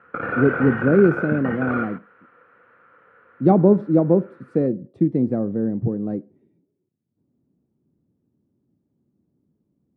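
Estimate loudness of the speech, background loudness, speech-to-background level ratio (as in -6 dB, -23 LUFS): -20.0 LUFS, -27.0 LUFS, 7.0 dB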